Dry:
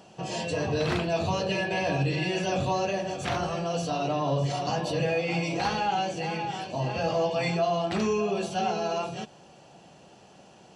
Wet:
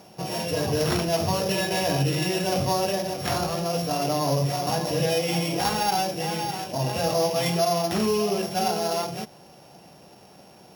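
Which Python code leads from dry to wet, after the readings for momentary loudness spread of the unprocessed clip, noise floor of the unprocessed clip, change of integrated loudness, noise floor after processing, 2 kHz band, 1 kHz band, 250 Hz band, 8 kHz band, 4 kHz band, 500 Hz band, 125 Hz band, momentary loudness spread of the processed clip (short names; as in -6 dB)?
5 LU, -53 dBFS, +3.5 dB, -50 dBFS, 0.0 dB, +2.5 dB, +3.0 dB, +9.5 dB, +6.0 dB, +2.5 dB, +3.0 dB, 5 LU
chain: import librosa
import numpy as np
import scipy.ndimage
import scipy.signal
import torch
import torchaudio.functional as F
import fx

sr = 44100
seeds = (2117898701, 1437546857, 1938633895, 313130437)

y = np.r_[np.sort(x[:len(x) // 8 * 8].reshape(-1, 8), axis=1).ravel(), x[len(x) // 8 * 8:]]
y = F.gain(torch.from_numpy(y), 3.0).numpy()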